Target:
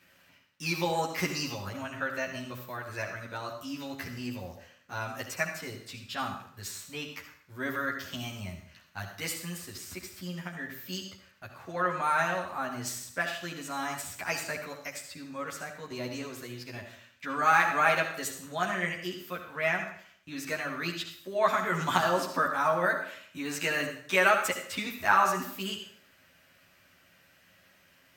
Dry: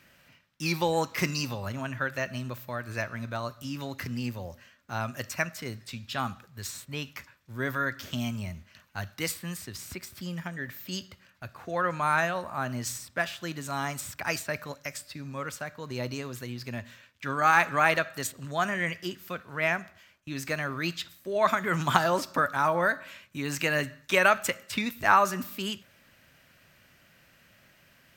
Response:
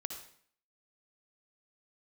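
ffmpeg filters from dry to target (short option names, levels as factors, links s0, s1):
-filter_complex "[0:a]lowshelf=f=180:g=-6,asplit=2[s0][s1];[1:a]atrim=start_sample=2205,adelay=11[s2];[s1][s2]afir=irnorm=-1:irlink=0,volume=1.41[s3];[s0][s3]amix=inputs=2:normalize=0,volume=0.531"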